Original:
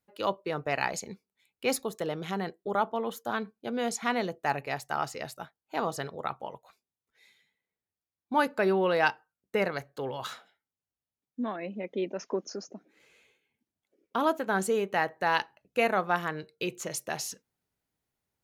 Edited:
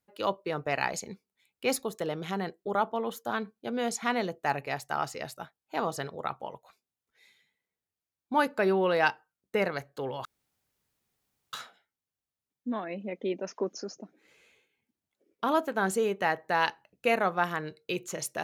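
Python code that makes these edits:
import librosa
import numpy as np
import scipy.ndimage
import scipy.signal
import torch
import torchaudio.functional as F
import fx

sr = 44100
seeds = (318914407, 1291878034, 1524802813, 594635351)

y = fx.edit(x, sr, fx.insert_room_tone(at_s=10.25, length_s=1.28), tone=tone)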